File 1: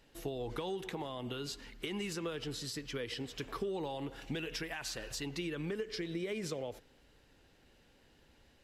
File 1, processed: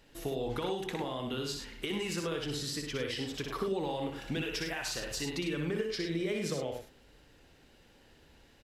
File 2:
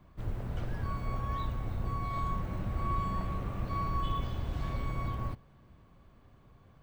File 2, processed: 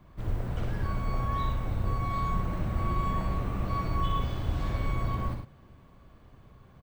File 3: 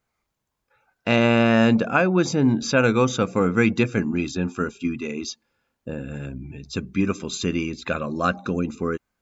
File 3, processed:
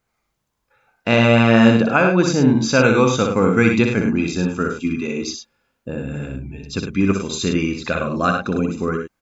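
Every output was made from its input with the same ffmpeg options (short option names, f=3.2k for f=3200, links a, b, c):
-af "aecho=1:1:61.22|102:0.562|0.398,volume=3dB"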